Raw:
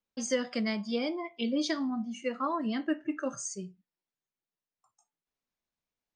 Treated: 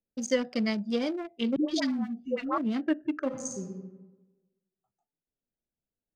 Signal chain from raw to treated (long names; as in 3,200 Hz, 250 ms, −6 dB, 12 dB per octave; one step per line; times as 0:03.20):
adaptive Wiener filter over 41 samples
0:01.56–0:02.58: all-pass dispersion highs, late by 125 ms, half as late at 510 Hz
0:03.26–0:03.67: thrown reverb, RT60 1.2 s, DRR 1 dB
level +3.5 dB